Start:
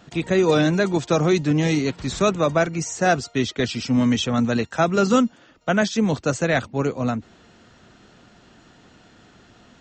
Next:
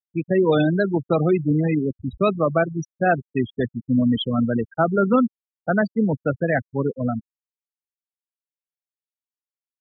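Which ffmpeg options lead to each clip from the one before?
ffmpeg -i in.wav -af "afftfilt=real='re*gte(hypot(re,im),0.178)':imag='im*gte(hypot(re,im),0.178)':win_size=1024:overlap=0.75" out.wav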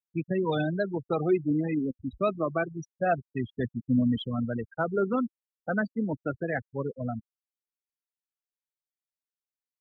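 ffmpeg -i in.wav -af "aphaser=in_gain=1:out_gain=1:delay=4:decay=0.4:speed=0.26:type=triangular,volume=-8.5dB" out.wav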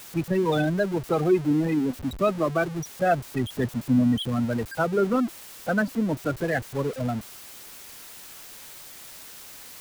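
ffmpeg -i in.wav -af "aeval=exprs='val(0)+0.5*0.0168*sgn(val(0))':channel_layout=same,volume=3dB" out.wav

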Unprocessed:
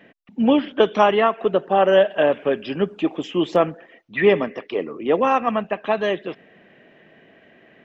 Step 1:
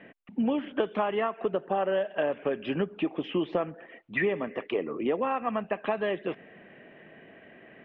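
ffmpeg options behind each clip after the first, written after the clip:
ffmpeg -i in.wav -af "lowpass=frequency=3000:width=0.5412,lowpass=frequency=3000:width=1.3066,acompressor=threshold=-25dB:ratio=6" out.wav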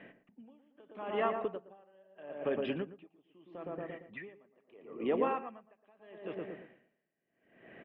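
ffmpeg -i in.wav -filter_complex "[0:a]asplit=2[link_01][link_02];[link_02]adelay=115,lowpass=frequency=1200:poles=1,volume=-5dB,asplit=2[link_03][link_04];[link_04]adelay=115,lowpass=frequency=1200:poles=1,volume=0.53,asplit=2[link_05][link_06];[link_06]adelay=115,lowpass=frequency=1200:poles=1,volume=0.53,asplit=2[link_07][link_08];[link_08]adelay=115,lowpass=frequency=1200:poles=1,volume=0.53,asplit=2[link_09][link_10];[link_10]adelay=115,lowpass=frequency=1200:poles=1,volume=0.53,asplit=2[link_11][link_12];[link_12]adelay=115,lowpass=frequency=1200:poles=1,volume=0.53,asplit=2[link_13][link_14];[link_14]adelay=115,lowpass=frequency=1200:poles=1,volume=0.53[link_15];[link_01][link_03][link_05][link_07][link_09][link_11][link_13][link_15]amix=inputs=8:normalize=0,aeval=exprs='val(0)*pow(10,-35*(0.5-0.5*cos(2*PI*0.77*n/s))/20)':channel_layout=same,volume=-2.5dB" out.wav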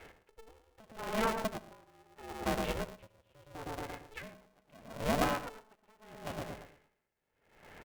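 ffmpeg -i in.wav -af "aecho=1:1:76|152|228:0.158|0.0444|0.0124,aeval=exprs='val(0)*sgn(sin(2*PI*220*n/s))':channel_layout=same" out.wav

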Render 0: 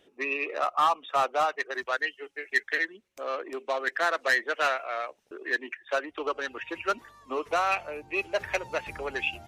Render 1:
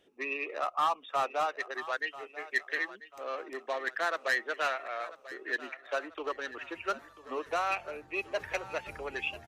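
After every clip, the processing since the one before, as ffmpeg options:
ffmpeg -i in.wav -af "aecho=1:1:991|1982|2973|3964:0.15|0.0703|0.0331|0.0155,volume=-5dB" out.wav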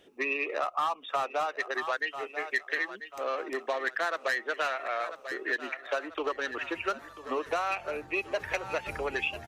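ffmpeg -i in.wav -af "acompressor=threshold=-35dB:ratio=4,volume=7.5dB" out.wav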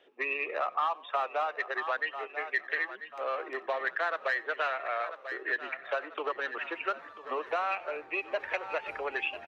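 ffmpeg -i in.wav -filter_complex "[0:a]acrossover=split=370 3700:gain=0.1 1 0.0891[link_01][link_02][link_03];[link_01][link_02][link_03]amix=inputs=3:normalize=0,asplit=5[link_04][link_05][link_06][link_07][link_08];[link_05]adelay=92,afreqshift=-56,volume=-23dB[link_09];[link_06]adelay=184,afreqshift=-112,volume=-28.2dB[link_10];[link_07]adelay=276,afreqshift=-168,volume=-33.4dB[link_11];[link_08]adelay=368,afreqshift=-224,volume=-38.6dB[link_12];[link_04][link_09][link_10][link_11][link_12]amix=inputs=5:normalize=0" out.wav

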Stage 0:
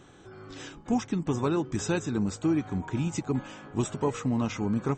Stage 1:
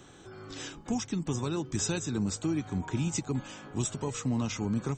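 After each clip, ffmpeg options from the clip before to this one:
ffmpeg -i in.wav -filter_complex "[0:a]acrossover=split=160|3400[link_01][link_02][link_03];[link_02]alimiter=level_in=0.5dB:limit=-24dB:level=0:latency=1:release=448,volume=-0.5dB[link_04];[link_03]acontrast=35[link_05];[link_01][link_04][link_05]amix=inputs=3:normalize=0" out.wav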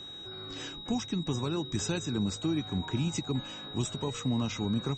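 ffmpeg -i in.wav -af "highshelf=frequency=6600:gain=-9,aeval=exprs='val(0)+0.00794*sin(2*PI*3800*n/s)':channel_layout=same" out.wav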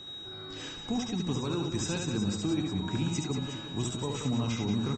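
ffmpeg -i in.wav -af "aecho=1:1:70|182|361.2|647.9|1107:0.631|0.398|0.251|0.158|0.1,volume=-1.5dB" out.wav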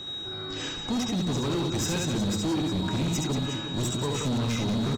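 ffmpeg -i in.wav -af "asoftclip=type=hard:threshold=-31dB,volume=7dB" out.wav

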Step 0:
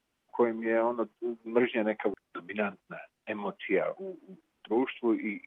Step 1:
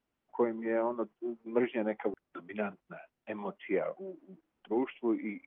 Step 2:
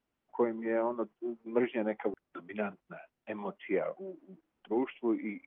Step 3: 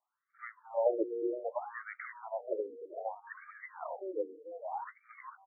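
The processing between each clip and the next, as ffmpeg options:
ffmpeg -i in.wav -af "highshelf=frequency=2400:gain=-10.5,volume=-3dB" out.wav
ffmpeg -i in.wav -af anull out.wav
ffmpeg -i in.wav -filter_complex "[0:a]asplit=5[link_01][link_02][link_03][link_04][link_05];[link_02]adelay=459,afreqshift=130,volume=-5dB[link_06];[link_03]adelay=918,afreqshift=260,volume=-13.9dB[link_07];[link_04]adelay=1377,afreqshift=390,volume=-22.7dB[link_08];[link_05]adelay=1836,afreqshift=520,volume=-31.6dB[link_09];[link_01][link_06][link_07][link_08][link_09]amix=inputs=5:normalize=0,afftfilt=real='re*between(b*sr/1024,360*pow(1700/360,0.5+0.5*sin(2*PI*0.64*pts/sr))/1.41,360*pow(1700/360,0.5+0.5*sin(2*PI*0.64*pts/sr))*1.41)':imag='im*between(b*sr/1024,360*pow(1700/360,0.5+0.5*sin(2*PI*0.64*pts/sr))/1.41,360*pow(1700/360,0.5+0.5*sin(2*PI*0.64*pts/sr))*1.41)':win_size=1024:overlap=0.75,volume=3dB" out.wav

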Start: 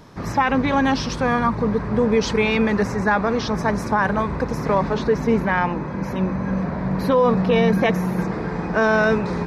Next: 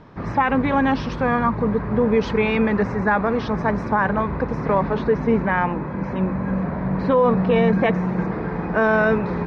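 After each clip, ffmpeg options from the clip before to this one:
ffmpeg -i in.wav -af "lowpass=2600" out.wav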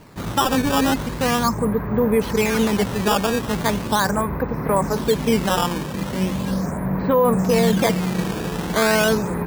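ffmpeg -i in.wav -af "acrusher=samples=12:mix=1:aa=0.000001:lfo=1:lforange=19.2:lforate=0.39" out.wav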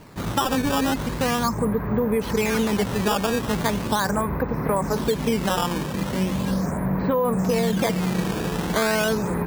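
ffmpeg -i in.wav -af "acompressor=threshold=-18dB:ratio=6" out.wav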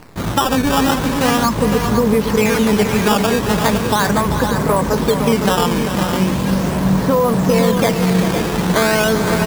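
ffmpeg -i in.wav -af "acrusher=bits=7:dc=4:mix=0:aa=0.000001,aecho=1:1:392|511:0.335|0.447,volume=6.5dB" out.wav

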